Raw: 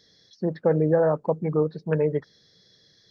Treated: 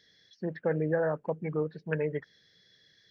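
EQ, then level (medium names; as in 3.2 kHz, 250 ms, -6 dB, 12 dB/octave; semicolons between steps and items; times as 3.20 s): high-order bell 2.2 kHz +10.5 dB 1.3 oct; dynamic bell 4.2 kHz, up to -4 dB, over -48 dBFS, Q 1.4; -8.0 dB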